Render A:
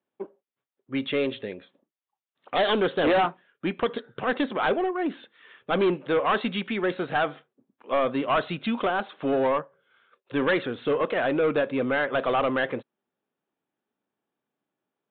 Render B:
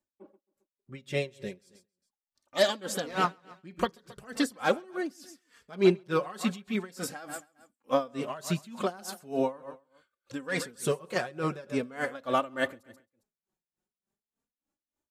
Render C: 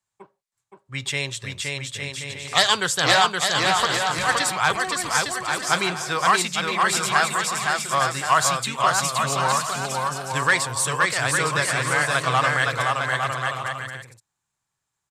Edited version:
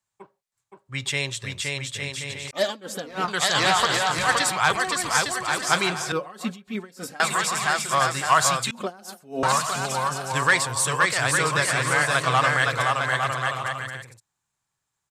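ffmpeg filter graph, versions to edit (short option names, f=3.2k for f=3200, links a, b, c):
-filter_complex "[1:a]asplit=3[a][b][c];[2:a]asplit=4[d][e][f][g];[d]atrim=end=2.512[h];[a]atrim=start=2.508:end=3.282[i];[e]atrim=start=3.278:end=6.122[j];[b]atrim=start=6.118:end=7.202[k];[f]atrim=start=7.198:end=8.712[l];[c]atrim=start=8.708:end=9.432[m];[g]atrim=start=9.428[n];[h][i]acrossfade=d=0.004:c1=hsin:c2=hsin[o];[o][j]acrossfade=d=0.004:c1=hsin:c2=hsin[p];[p][k]acrossfade=d=0.004:c1=hsin:c2=hsin[q];[q][l]acrossfade=d=0.004:c1=hsin:c2=hsin[r];[r][m]acrossfade=d=0.004:c1=hsin:c2=hsin[s];[s][n]acrossfade=d=0.004:c1=hsin:c2=hsin"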